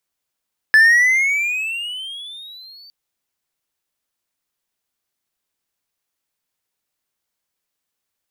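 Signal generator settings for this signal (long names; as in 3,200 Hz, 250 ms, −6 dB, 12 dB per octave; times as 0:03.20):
pitch glide with a swell triangle, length 2.16 s, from 1,730 Hz, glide +17 semitones, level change −34 dB, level −4.5 dB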